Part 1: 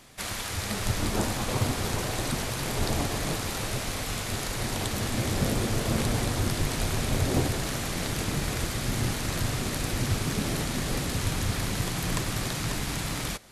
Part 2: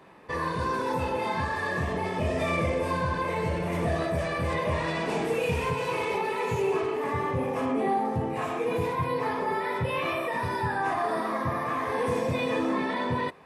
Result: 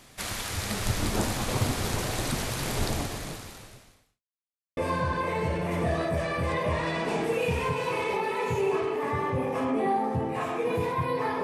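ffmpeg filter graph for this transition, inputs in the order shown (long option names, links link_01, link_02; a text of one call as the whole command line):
ffmpeg -i cue0.wav -i cue1.wav -filter_complex "[0:a]apad=whole_dur=11.43,atrim=end=11.43,asplit=2[link_01][link_02];[link_01]atrim=end=4.23,asetpts=PTS-STARTPTS,afade=type=out:start_time=2.79:duration=1.44:curve=qua[link_03];[link_02]atrim=start=4.23:end=4.77,asetpts=PTS-STARTPTS,volume=0[link_04];[1:a]atrim=start=2.78:end=9.44,asetpts=PTS-STARTPTS,afade=type=in:duration=0.004:curve=hsin[link_05];[link_03][link_04][link_05]concat=n=3:v=0:a=1" out.wav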